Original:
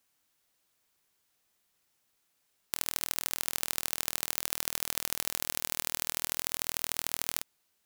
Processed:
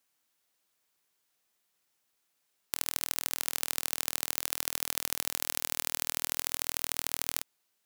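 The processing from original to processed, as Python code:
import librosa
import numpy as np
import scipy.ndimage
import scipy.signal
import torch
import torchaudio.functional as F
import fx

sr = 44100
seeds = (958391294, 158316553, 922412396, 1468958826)

p1 = fx.low_shelf(x, sr, hz=120.0, db=-10.0)
p2 = fx.quant_dither(p1, sr, seeds[0], bits=6, dither='none')
p3 = p1 + (p2 * 10.0 ** (-10.0 / 20.0))
y = p3 * 10.0 ** (-2.0 / 20.0)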